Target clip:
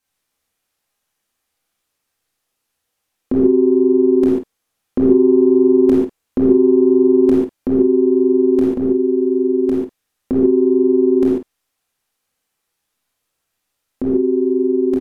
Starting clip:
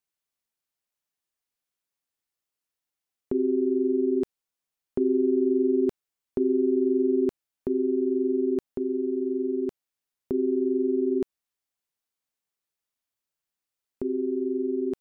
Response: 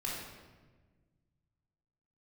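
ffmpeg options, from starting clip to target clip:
-filter_complex "[0:a]asplit=2[link_01][link_02];[link_02]adelay=50,volume=-10.5dB[link_03];[link_01][link_03]amix=inputs=2:normalize=0,acontrast=81[link_04];[1:a]atrim=start_sample=2205,atrim=end_sample=4410,asetrate=29106,aresample=44100[link_05];[link_04][link_05]afir=irnorm=-1:irlink=0,volume=3.5dB"

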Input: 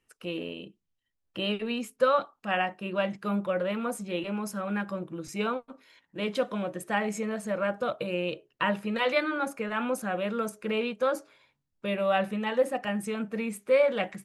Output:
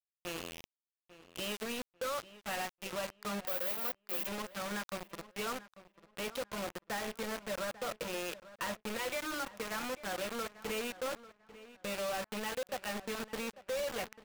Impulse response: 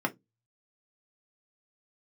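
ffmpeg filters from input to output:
-filter_complex "[0:a]lowpass=4600,aeval=exprs='0.237*(cos(1*acos(clip(val(0)/0.237,-1,1)))-cos(1*PI/2))+0.0335*(cos(5*acos(clip(val(0)/0.237,-1,1)))-cos(5*PI/2))+0.0075*(cos(8*acos(clip(val(0)/0.237,-1,1)))-cos(8*PI/2))':channel_layout=same,lowshelf=frequency=230:gain=-10,acompressor=threshold=-26dB:ratio=5,acrusher=bits=4:mix=0:aa=0.000001,asettb=1/sr,asplit=3[link_01][link_02][link_03];[link_01]atrim=end=3.474[link_04];[link_02]atrim=start=3.47:end=4.27,asetpts=PTS-STARTPTS,afade=type=in:duration=0.004:curve=qsin,afade=type=out:start_time=0.796:duration=0.004:curve=qsin,aemphasis=mode=production:type=bsi[link_05];[link_03]atrim=start=4.266[link_06];[link_04][link_05]acrossfade=duration=0.004:curve1=hsin:curve2=qsin[link_07];[link_07][link_06]acrossfade=duration=0.004:curve1=qsin:curve2=hsin,asoftclip=type=tanh:threshold=-22dB,asplit=2[link_08][link_09];[link_09]adelay=844,lowpass=frequency=3400:poles=1,volume=-16dB,asplit=2[link_10][link_11];[link_11]adelay=844,lowpass=frequency=3400:poles=1,volume=0.26,asplit=2[link_12][link_13];[link_13]adelay=844,lowpass=frequency=3400:poles=1,volume=0.26[link_14];[link_10][link_12][link_14]amix=inputs=3:normalize=0[link_15];[link_08][link_15]amix=inputs=2:normalize=0,volume=-7.5dB"

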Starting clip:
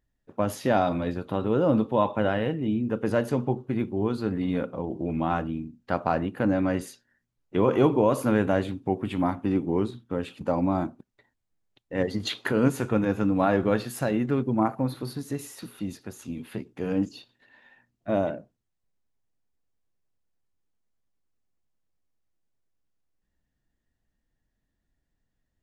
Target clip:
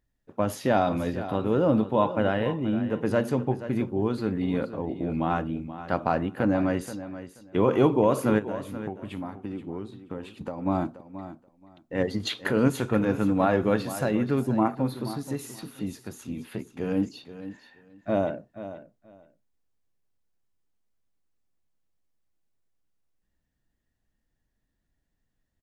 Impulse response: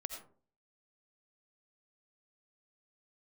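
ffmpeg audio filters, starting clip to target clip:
-filter_complex "[0:a]asplit=3[link_01][link_02][link_03];[link_01]afade=type=out:start_time=8.38:duration=0.02[link_04];[link_02]acompressor=threshold=-32dB:ratio=6,afade=type=in:start_time=8.38:duration=0.02,afade=type=out:start_time=10.65:duration=0.02[link_05];[link_03]afade=type=in:start_time=10.65:duration=0.02[link_06];[link_04][link_05][link_06]amix=inputs=3:normalize=0,aecho=1:1:479|958:0.224|0.0403"

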